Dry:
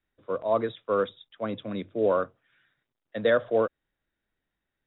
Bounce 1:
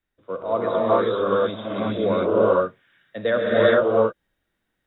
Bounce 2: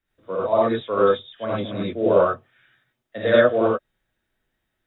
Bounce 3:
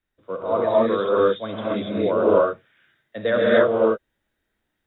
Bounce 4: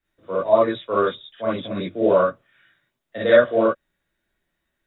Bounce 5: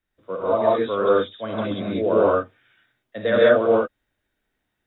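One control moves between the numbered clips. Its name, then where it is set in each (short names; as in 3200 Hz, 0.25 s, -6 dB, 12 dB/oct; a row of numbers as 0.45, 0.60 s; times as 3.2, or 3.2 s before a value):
non-linear reverb, gate: 460, 120, 310, 80, 210 ms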